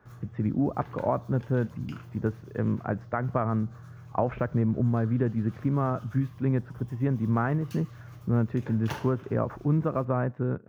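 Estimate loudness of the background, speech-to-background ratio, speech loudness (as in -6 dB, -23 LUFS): -46.0 LUFS, 17.0 dB, -29.0 LUFS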